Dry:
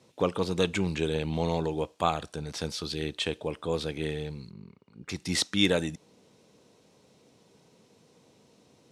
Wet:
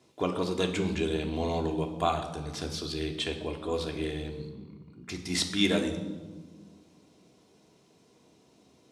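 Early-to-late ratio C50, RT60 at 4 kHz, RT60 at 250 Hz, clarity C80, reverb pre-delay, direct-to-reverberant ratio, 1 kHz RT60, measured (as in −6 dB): 9.0 dB, 0.95 s, 2.4 s, 11.0 dB, 3 ms, 2.0 dB, 1.2 s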